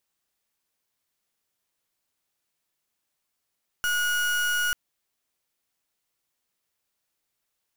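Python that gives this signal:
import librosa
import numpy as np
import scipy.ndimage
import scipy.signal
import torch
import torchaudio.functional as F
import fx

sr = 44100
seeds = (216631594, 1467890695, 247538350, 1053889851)

y = fx.pulse(sr, length_s=0.89, hz=1450.0, level_db=-25.0, duty_pct=36)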